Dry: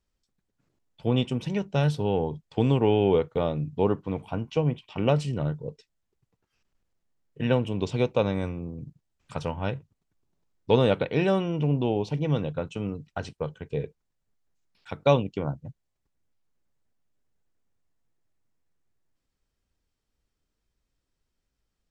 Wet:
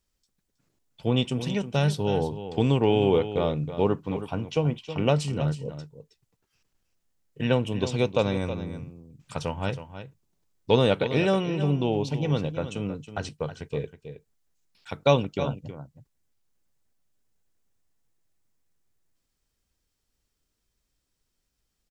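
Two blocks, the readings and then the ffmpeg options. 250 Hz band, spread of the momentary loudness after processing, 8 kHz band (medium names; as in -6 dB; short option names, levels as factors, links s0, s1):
+0.5 dB, 15 LU, no reading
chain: -af "highshelf=f=3900:g=9,aecho=1:1:320:0.266"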